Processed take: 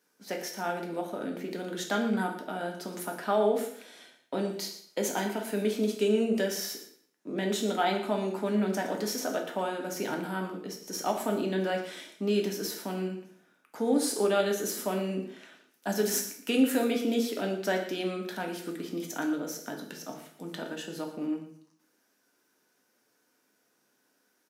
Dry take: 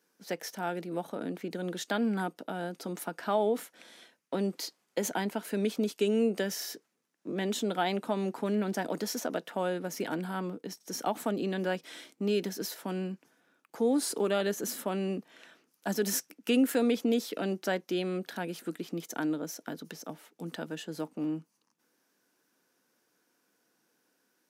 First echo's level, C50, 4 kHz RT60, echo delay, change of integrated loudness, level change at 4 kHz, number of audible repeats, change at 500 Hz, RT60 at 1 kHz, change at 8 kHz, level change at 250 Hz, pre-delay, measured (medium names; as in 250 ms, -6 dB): -13.5 dB, 7.0 dB, 0.55 s, 116 ms, +1.5 dB, +2.0 dB, 1, +2.0 dB, 0.55 s, +2.5 dB, +1.0 dB, 3 ms